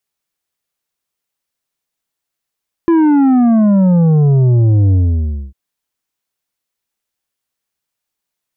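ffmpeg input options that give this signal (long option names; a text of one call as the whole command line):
ffmpeg -f lavfi -i "aevalsrc='0.398*clip((2.65-t)/0.61,0,1)*tanh(2.37*sin(2*PI*340*2.65/log(65/340)*(exp(log(65/340)*t/2.65)-1)))/tanh(2.37)':duration=2.65:sample_rate=44100" out.wav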